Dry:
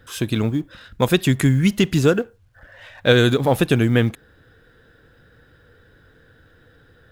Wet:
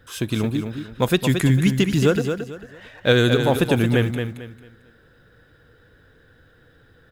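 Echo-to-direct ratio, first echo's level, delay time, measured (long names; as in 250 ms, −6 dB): −6.5 dB, −7.0 dB, 223 ms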